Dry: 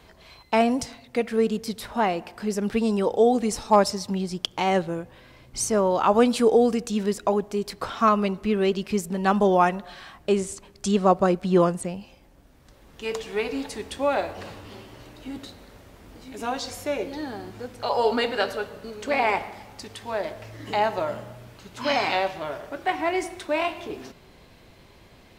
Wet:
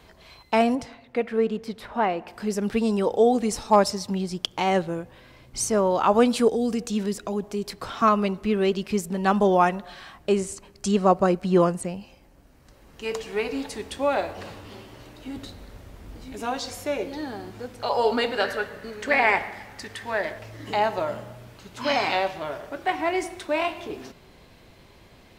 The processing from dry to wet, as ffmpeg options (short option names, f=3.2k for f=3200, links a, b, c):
-filter_complex "[0:a]asettb=1/sr,asplit=3[a][b][c];[a]atrim=end=0.754[d];[b]atrim=start=0.75:end=2.28,asetpts=PTS-STARTPTS,afade=t=in:d=0.004:c=qsin,afade=t=out:st=1.526:d=0.004:c=qsin,bass=f=250:g=-4,treble=f=4k:g=-14[e];[c]atrim=start=2.276[f];[d][e]acrossfade=d=0.004:c1=hsin:c2=qsin[g];[g][f]acrossfade=d=0.004:c1=qsin:c2=hsin,asettb=1/sr,asplit=3[h][i][j];[h]atrim=end=6.484[k];[i]atrim=start=6.48:end=8.02,asetpts=PTS-STARTPTS,afade=t=in:d=0.004:c=qsin,afade=t=out:st=1.536:d=0.004:c=qsin,acrossover=split=310|3000[l][m][n];[m]acompressor=threshold=-30dB:ratio=6:attack=3.2:release=140:knee=2.83:detection=peak[o];[l][o][n]amix=inputs=3:normalize=0[p];[j]atrim=start=8.016[q];[k][p]acrossfade=d=0.004:c1=hsin:c2=qsin[r];[r][q]acrossfade=d=0.004:c1=qsin:c2=hsin,asettb=1/sr,asplit=3[s][t][u];[s]atrim=end=10.294[v];[t]atrim=start=10.29:end=13.53,asetpts=PTS-STARTPTS,afade=t=in:d=0.004:c=qsin,afade=t=out:st=3.236:d=0.004:c=qsin,bandreject=f=3.5k:w=12[w];[u]atrim=start=13.526[x];[v][w]acrossfade=d=0.004:c1=hsin:c2=qsin[y];[y][x]acrossfade=d=0.004:c1=qsin:c2=hsin,asettb=1/sr,asplit=3[z][aa][ab];[z]atrim=end=15.374[ac];[aa]atrim=start=15.37:end=16.39,asetpts=PTS-STARTPTS,afade=t=in:d=0.004:c=qsin,afade=t=out:st=1.016:d=0.004:c=qsin,lowshelf=f=110:g=10.5[ad];[ab]atrim=start=16.386[ae];[ac][ad]acrossfade=d=0.004:c1=hsin:c2=qsin[af];[af][ae]acrossfade=d=0.004:c1=qsin:c2=hsin,asettb=1/sr,asplit=3[ag][ah][ai];[ag]atrim=end=18.444[aj];[ah]atrim=start=18.44:end=20.39,asetpts=PTS-STARTPTS,afade=t=in:d=0.004:c=qsin,afade=t=out:st=1.946:d=0.004:c=qsin,equalizer=f=1.8k:t=o:w=0.52:g=11.5[ak];[ai]atrim=start=20.386[al];[aj][ak]acrossfade=d=0.004:c1=hsin:c2=qsin[am];[am][al]acrossfade=d=0.004:c1=qsin:c2=hsin"